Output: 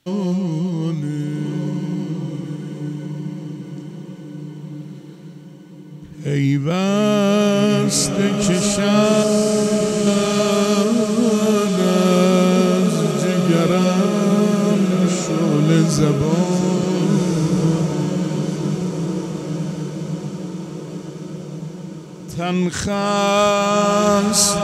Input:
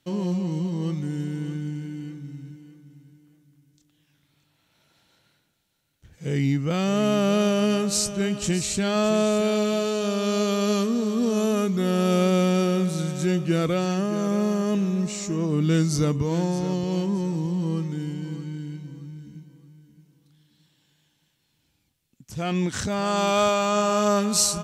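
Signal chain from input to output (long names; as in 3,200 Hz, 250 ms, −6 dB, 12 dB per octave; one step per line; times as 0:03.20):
0:09.23–0:10.07: moving average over 22 samples
feedback delay with all-pass diffusion 1,495 ms, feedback 54%, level −5 dB
level +5.5 dB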